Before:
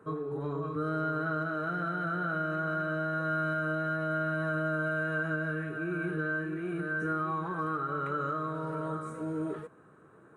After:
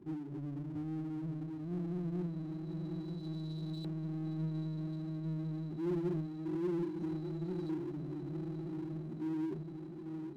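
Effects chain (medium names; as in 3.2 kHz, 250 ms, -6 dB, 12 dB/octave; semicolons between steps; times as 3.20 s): brick-wall FIR band-stop 390–3900 Hz; LFO low-pass saw up 0.26 Hz 420–3700 Hz; spectral noise reduction 9 dB; on a send: echo that smears into a reverb 959 ms, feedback 59%, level -8.5 dB; on the sum: power-law waveshaper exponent 0.7; trim -1 dB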